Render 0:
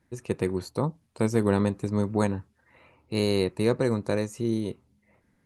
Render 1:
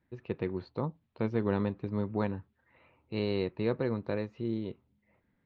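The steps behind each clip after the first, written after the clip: steep low-pass 3.9 kHz 36 dB/octave; trim -6.5 dB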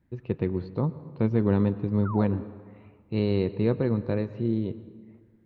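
bass shelf 370 Hz +10.5 dB; painted sound fall, 2.05–2.42 s, 230–1500 Hz -37 dBFS; on a send at -15.5 dB: reverberation RT60 1.7 s, pre-delay 97 ms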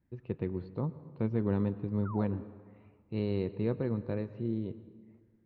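distance through air 99 m; trim -7 dB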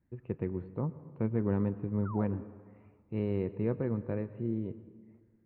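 low-pass 2.5 kHz 24 dB/octave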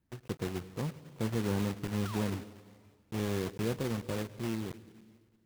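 block-companded coder 3-bit; trim -2 dB

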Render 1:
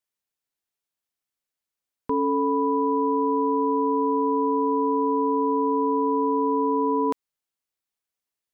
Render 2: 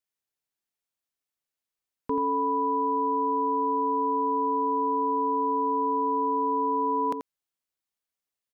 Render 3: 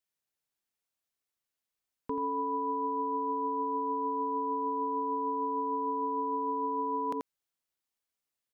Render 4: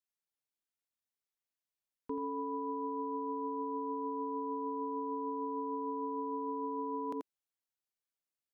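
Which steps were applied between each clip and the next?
delay 85 ms -8 dB; trim -3 dB
peak limiter -25.5 dBFS, peak gain reduction 8 dB
dynamic bell 330 Hz, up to +7 dB, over -50 dBFS, Q 1.3; trim -8 dB

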